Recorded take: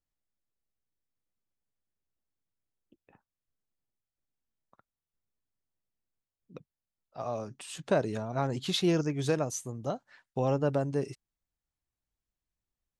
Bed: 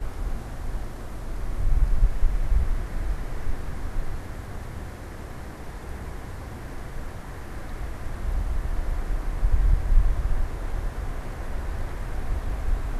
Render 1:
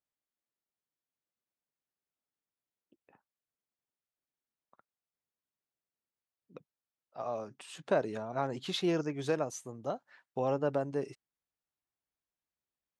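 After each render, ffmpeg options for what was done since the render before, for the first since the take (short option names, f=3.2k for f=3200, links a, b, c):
-af "highpass=f=360:p=1,highshelf=f=3.6k:g=-9.5"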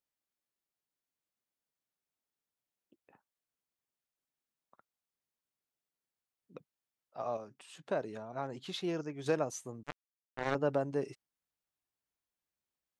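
-filter_complex "[0:a]asettb=1/sr,asplit=3[a][b][c];[a]atrim=end=9.834[d];[b]atrim=start=9.83:end=10.55,asetpts=PTS-STARTPTS,afade=t=in:d=0.004:c=qsin,afade=t=out:st=0.716:d=0.004:c=qsin,acrusher=bits=3:mix=0:aa=0.5[e];[c]atrim=start=10.546[f];[d][e]acrossfade=d=0.004:c1=hsin:c2=qsin[g];[g][f]acrossfade=d=0.004:c1=qsin:c2=hsin,asplit=3[h][i][j];[h]atrim=end=7.372[k];[i]atrim=start=7.368:end=9.262,asetpts=PTS-STARTPTS,volume=-5.5dB[l];[j]atrim=start=9.258[m];[k][l]acrossfade=d=0.004:c1=hsin:c2=hsin[n];[n][m]acrossfade=d=0.004:c1=hsin:c2=hsin"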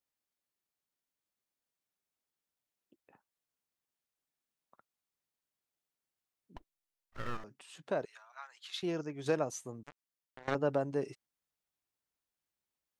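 -filter_complex "[0:a]asettb=1/sr,asplit=3[a][b][c];[a]atrim=end=6.564[d];[b]atrim=start=6.56:end=7.44,asetpts=PTS-STARTPTS,afade=t=in:d=0.004:c=qsin,afade=t=out:st=0.876:d=0.004:c=qsin,aeval=exprs='abs(val(0))':c=same[e];[c]atrim=start=7.436[f];[d][e]acrossfade=d=0.004:c1=hsin:c2=qsin[g];[g][f]acrossfade=d=0.004:c1=qsin:c2=hsin,asettb=1/sr,asplit=3[h][i][j];[h]atrim=end=8.054[k];[i]atrim=start=8.05:end=8.83,asetpts=PTS-STARTPTS,afade=t=in:d=0.004:c=qsin,afade=t=out:st=0.776:d=0.004:c=qsin,highpass=f=1.2k:w=0.5412,highpass=f=1.2k:w=1.3066[l];[j]atrim=start=8.826[m];[k][l]acrossfade=d=0.004:c1=hsin:c2=qsin[n];[n][m]acrossfade=d=0.004:c1=qsin:c2=hsin,asettb=1/sr,asplit=3[o][p][q];[o]atrim=end=9.874[r];[p]atrim=start=9.87:end=10.48,asetpts=PTS-STARTPTS,afade=t=in:d=0.004:c=qsin,afade=t=out:st=0.606:d=0.004:c=qsin,acompressor=threshold=-47dB:ratio=12:attack=3.2:release=140:knee=1:detection=peak[s];[q]atrim=start=10.476[t];[r][s]acrossfade=d=0.004:c1=hsin:c2=qsin[u];[u][t]acrossfade=d=0.004:c1=qsin:c2=hsin"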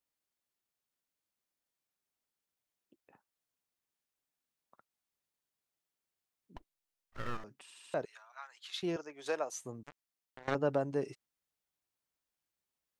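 -filter_complex "[0:a]asettb=1/sr,asplit=3[a][b][c];[a]atrim=end=8.964[d];[b]atrim=start=8.96:end=9.56,asetpts=PTS-STARTPTS,afade=t=in:d=0.004:c=qsin,afade=t=out:st=0.596:d=0.004:c=qsin,highpass=540[e];[c]atrim=start=9.556[f];[d][e]acrossfade=d=0.004:c1=hsin:c2=qsin[g];[g][f]acrossfade=d=0.004:c1=qsin:c2=hsin,asplit=5[h][i][j][k][l];[h]atrim=end=7.702[m];[i]atrim=start=7.618:end=7.702[n];[j]atrim=start=7.618:end=7.702[o];[k]atrim=start=7.618:end=7.702[p];[l]atrim=start=7.938[q];[m][n]acrossfade=d=0.004:c1=hsin:c2=hsin[r];[r][o]acrossfade=d=0.004:c1=hsin:c2=hsin[s];[s][p]acrossfade=d=0.004:c1=hsin:c2=hsin[t];[t][q]acrossfade=d=0.004:c1=hsin:c2=hsin"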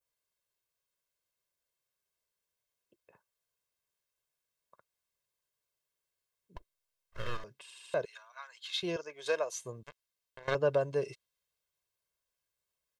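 -af "aecho=1:1:1.9:0.7,adynamicequalizer=threshold=0.00126:dfrequency=3500:dqfactor=1.3:tfrequency=3500:tqfactor=1.3:attack=5:release=100:ratio=0.375:range=3:mode=boostabove:tftype=bell"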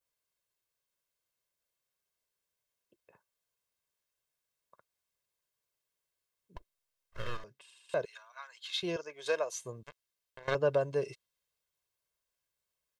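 -filter_complex "[0:a]asplit=2[a][b];[a]atrim=end=7.89,asetpts=PTS-STARTPTS,afade=t=out:st=7.19:d=0.7:silence=0.251189[c];[b]atrim=start=7.89,asetpts=PTS-STARTPTS,afade=t=in:d=0.004:c=hsin:silence=0.251189[d];[c][d]concat=n=2:v=0:a=1"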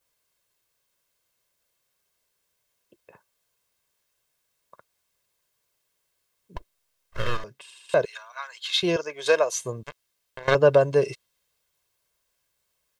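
-af "volume=11.5dB"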